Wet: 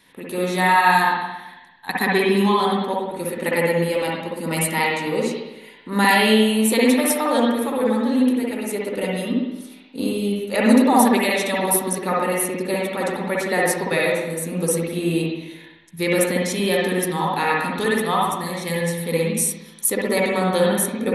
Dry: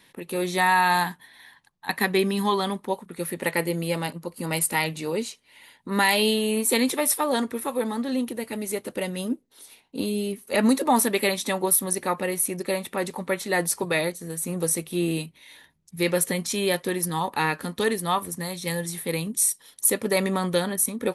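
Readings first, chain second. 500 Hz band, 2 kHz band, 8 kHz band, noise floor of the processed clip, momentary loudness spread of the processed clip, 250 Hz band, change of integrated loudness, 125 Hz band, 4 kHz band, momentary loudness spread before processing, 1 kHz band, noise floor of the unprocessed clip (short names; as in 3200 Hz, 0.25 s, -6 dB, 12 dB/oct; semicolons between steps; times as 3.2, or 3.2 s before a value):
+5.5 dB, +5.5 dB, 0.0 dB, -44 dBFS, 11 LU, +6.5 dB, +4.5 dB, +5.0 dB, +3.0 dB, 10 LU, +5.5 dB, -61 dBFS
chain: spring tank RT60 1 s, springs 55/59 ms, chirp 50 ms, DRR -4 dB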